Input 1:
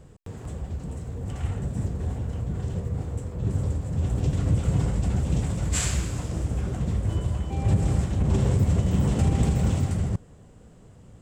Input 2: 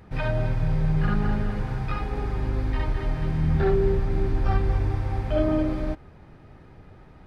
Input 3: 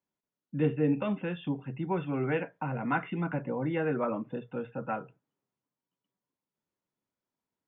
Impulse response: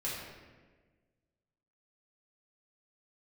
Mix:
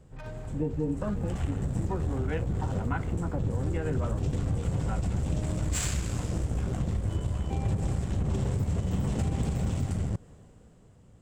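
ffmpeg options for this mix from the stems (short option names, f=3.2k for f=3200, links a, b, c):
-filter_complex "[0:a]dynaudnorm=f=100:g=21:m=9dB,aeval=exprs='0.631*(cos(1*acos(clip(val(0)/0.631,-1,1)))-cos(1*PI/2))+0.0316*(cos(8*acos(clip(val(0)/0.631,-1,1)))-cos(8*PI/2))':c=same,volume=-7dB[a];[1:a]adynamicsmooth=sensitivity=4.5:basefreq=550,volume=-15dB[b];[2:a]afwtdn=0.0126,volume=0dB[c];[a][b][c]amix=inputs=3:normalize=0,acompressor=threshold=-25dB:ratio=6"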